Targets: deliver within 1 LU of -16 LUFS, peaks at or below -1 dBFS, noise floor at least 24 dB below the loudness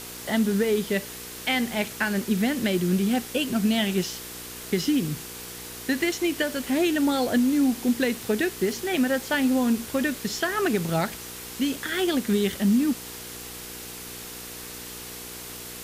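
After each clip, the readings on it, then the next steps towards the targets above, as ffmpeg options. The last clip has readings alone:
hum 60 Hz; highest harmonic 480 Hz; hum level -48 dBFS; noise floor -39 dBFS; noise floor target -49 dBFS; loudness -25.0 LUFS; peak level -12.0 dBFS; loudness target -16.0 LUFS
-> -af "bandreject=f=60:t=h:w=4,bandreject=f=120:t=h:w=4,bandreject=f=180:t=h:w=4,bandreject=f=240:t=h:w=4,bandreject=f=300:t=h:w=4,bandreject=f=360:t=h:w=4,bandreject=f=420:t=h:w=4,bandreject=f=480:t=h:w=4"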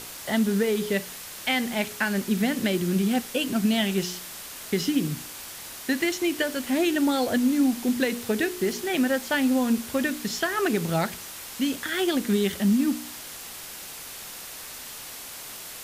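hum not found; noise floor -40 dBFS; noise floor target -50 dBFS
-> -af "afftdn=nr=10:nf=-40"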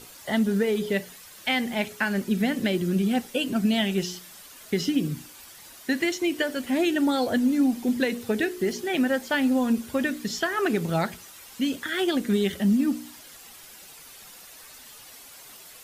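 noise floor -47 dBFS; noise floor target -50 dBFS
-> -af "afftdn=nr=6:nf=-47"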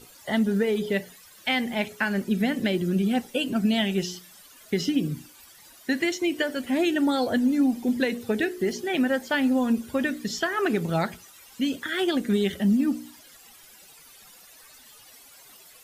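noise floor -51 dBFS; loudness -25.5 LUFS; peak level -12.0 dBFS; loudness target -16.0 LUFS
-> -af "volume=2.99"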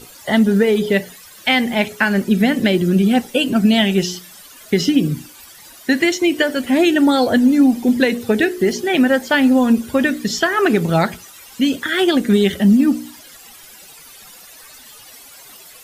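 loudness -16.0 LUFS; peak level -2.5 dBFS; noise floor -42 dBFS

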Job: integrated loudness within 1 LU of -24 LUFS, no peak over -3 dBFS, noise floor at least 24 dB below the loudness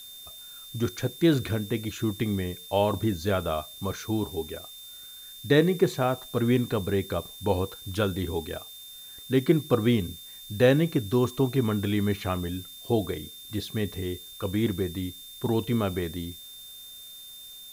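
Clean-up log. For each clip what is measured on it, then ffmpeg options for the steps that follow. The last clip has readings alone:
steady tone 3.6 kHz; tone level -44 dBFS; noise floor -45 dBFS; noise floor target -52 dBFS; loudness -27.5 LUFS; peak level -8.5 dBFS; loudness target -24.0 LUFS
-> -af "bandreject=f=3600:w=30"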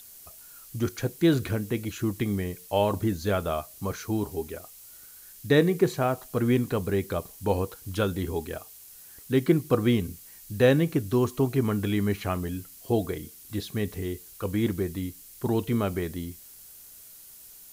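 steady tone not found; noise floor -49 dBFS; noise floor target -52 dBFS
-> -af "afftdn=nr=6:nf=-49"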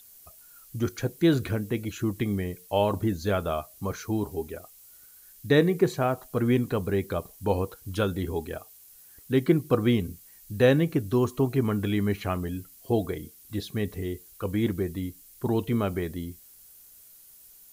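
noise floor -53 dBFS; loudness -27.5 LUFS; peak level -8.5 dBFS; loudness target -24.0 LUFS
-> -af "volume=1.5"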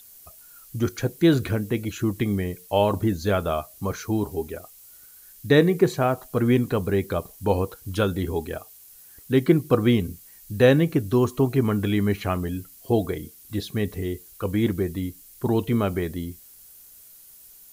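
loudness -24.0 LUFS; peak level -5.0 dBFS; noise floor -49 dBFS

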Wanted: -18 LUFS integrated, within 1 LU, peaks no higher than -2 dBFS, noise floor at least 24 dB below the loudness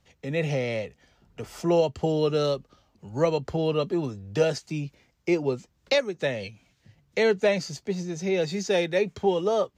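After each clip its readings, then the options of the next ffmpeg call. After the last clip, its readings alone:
loudness -26.5 LUFS; peak level -11.5 dBFS; loudness target -18.0 LUFS
-> -af "volume=2.66"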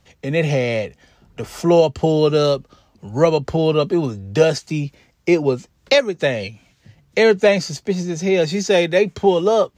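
loudness -18.0 LUFS; peak level -3.0 dBFS; noise floor -60 dBFS

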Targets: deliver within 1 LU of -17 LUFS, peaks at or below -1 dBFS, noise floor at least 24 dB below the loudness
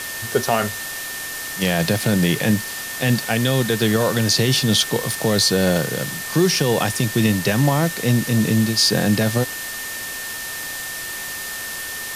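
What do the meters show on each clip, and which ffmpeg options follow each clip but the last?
steady tone 1.8 kHz; tone level -31 dBFS; noise floor -30 dBFS; noise floor target -44 dBFS; loudness -20.0 LUFS; peak level -5.0 dBFS; loudness target -17.0 LUFS
-> -af "bandreject=f=1800:w=30"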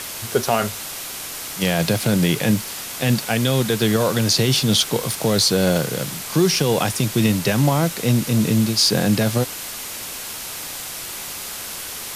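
steady tone not found; noise floor -32 dBFS; noise floor target -44 dBFS
-> -af "afftdn=nr=12:nf=-32"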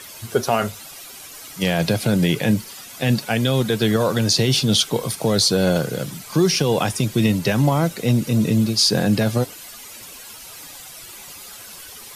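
noise floor -39 dBFS; noise floor target -44 dBFS
-> -af "afftdn=nr=6:nf=-39"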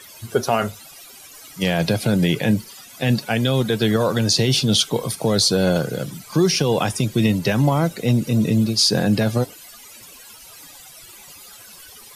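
noise floor -43 dBFS; noise floor target -44 dBFS
-> -af "afftdn=nr=6:nf=-43"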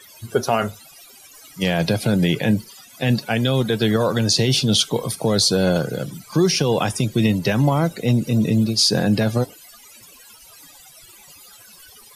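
noise floor -46 dBFS; loudness -19.5 LUFS; peak level -6.0 dBFS; loudness target -17.0 LUFS
-> -af "volume=1.33"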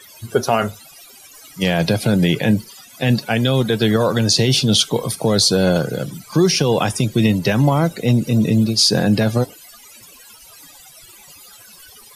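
loudness -17.0 LUFS; peak level -3.5 dBFS; noise floor -44 dBFS

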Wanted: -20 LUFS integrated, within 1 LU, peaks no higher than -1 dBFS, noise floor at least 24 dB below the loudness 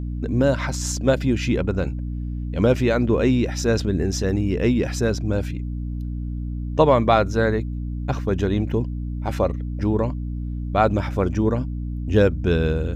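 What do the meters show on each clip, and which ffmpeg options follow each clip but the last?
hum 60 Hz; highest harmonic 300 Hz; hum level -25 dBFS; loudness -22.5 LUFS; peak level -3.5 dBFS; loudness target -20.0 LUFS
-> -af "bandreject=f=60:t=h:w=6,bandreject=f=120:t=h:w=6,bandreject=f=180:t=h:w=6,bandreject=f=240:t=h:w=6,bandreject=f=300:t=h:w=6"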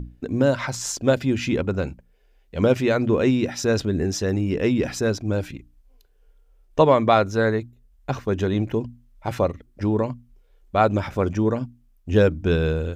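hum not found; loudness -22.5 LUFS; peak level -4.0 dBFS; loudness target -20.0 LUFS
-> -af "volume=1.33"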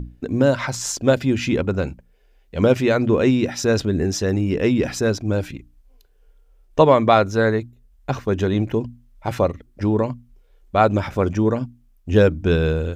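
loudness -20.0 LUFS; peak level -1.5 dBFS; noise floor -56 dBFS

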